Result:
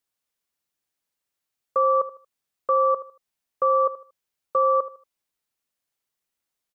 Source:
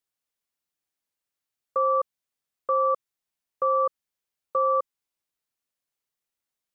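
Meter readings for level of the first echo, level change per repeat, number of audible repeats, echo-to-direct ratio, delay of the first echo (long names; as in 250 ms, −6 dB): −14.5 dB, −11.0 dB, 2, −14.0 dB, 77 ms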